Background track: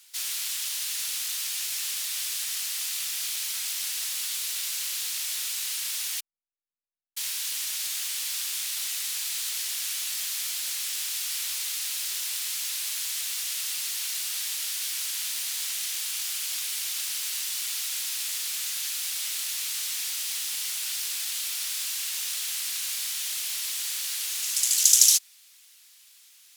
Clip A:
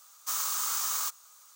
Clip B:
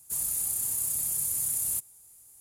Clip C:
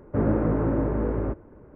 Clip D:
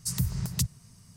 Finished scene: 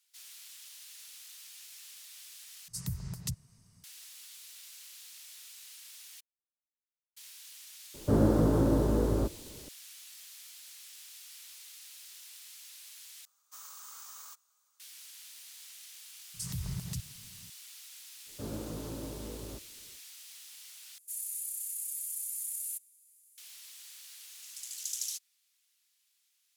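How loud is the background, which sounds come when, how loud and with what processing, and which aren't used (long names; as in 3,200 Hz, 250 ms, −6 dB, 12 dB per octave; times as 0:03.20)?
background track −19.5 dB
0:02.68: overwrite with D −8.5 dB
0:07.94: mix in C −1.5 dB + high-shelf EQ 2,400 Hz −11.5 dB
0:13.25: overwrite with A −17.5 dB
0:16.34: mix in D −3 dB + brickwall limiter −25.5 dBFS
0:18.25: mix in C −17 dB, fades 0.05 s
0:20.98: overwrite with B −8.5 dB + inverse Chebyshev high-pass filter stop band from 570 Hz, stop band 60 dB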